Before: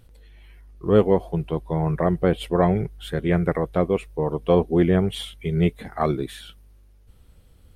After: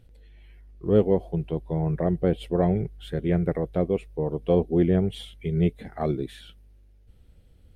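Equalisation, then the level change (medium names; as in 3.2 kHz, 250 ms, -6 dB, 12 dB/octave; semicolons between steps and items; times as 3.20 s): peaking EQ 1.1 kHz -9 dB 0.8 oct; dynamic bell 1.9 kHz, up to -4 dB, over -40 dBFS, Q 0.88; treble shelf 4.7 kHz -9.5 dB; -2.0 dB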